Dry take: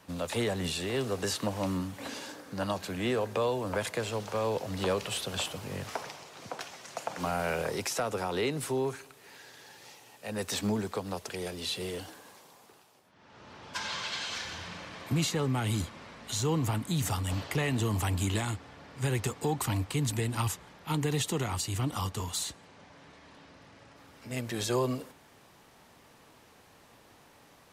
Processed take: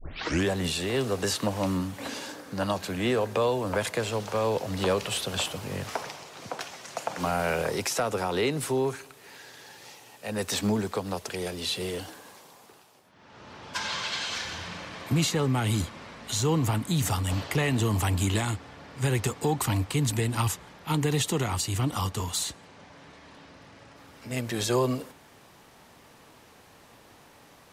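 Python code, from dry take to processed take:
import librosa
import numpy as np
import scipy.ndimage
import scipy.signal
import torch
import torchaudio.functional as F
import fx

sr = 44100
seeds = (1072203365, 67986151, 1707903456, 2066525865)

y = fx.tape_start_head(x, sr, length_s=0.51)
y = F.gain(torch.from_numpy(y), 4.0).numpy()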